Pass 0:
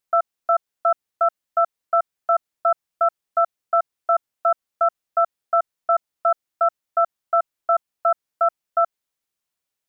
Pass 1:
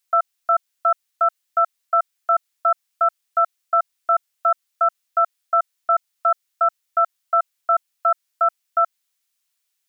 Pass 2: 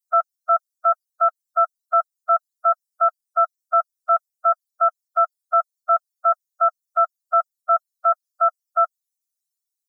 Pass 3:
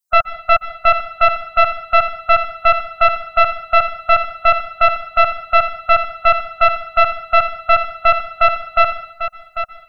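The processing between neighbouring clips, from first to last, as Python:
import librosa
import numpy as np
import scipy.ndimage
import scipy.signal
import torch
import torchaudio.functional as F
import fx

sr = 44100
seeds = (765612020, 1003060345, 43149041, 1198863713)

y1 = fx.tilt_shelf(x, sr, db=-9.5, hz=970.0)
y2 = fx.bin_expand(y1, sr, power=3.0)
y2 = F.gain(torch.from_numpy(y2), 1.5).numpy()
y3 = fx.tracing_dist(y2, sr, depth_ms=0.13)
y3 = y3 + 10.0 ** (-10.0 / 20.0) * np.pad(y3, (int(795 * sr / 1000.0), 0))[:len(y3)]
y3 = fx.rev_plate(y3, sr, seeds[0], rt60_s=0.5, hf_ratio=0.95, predelay_ms=115, drr_db=12.5)
y3 = F.gain(torch.from_numpy(y3), 5.0).numpy()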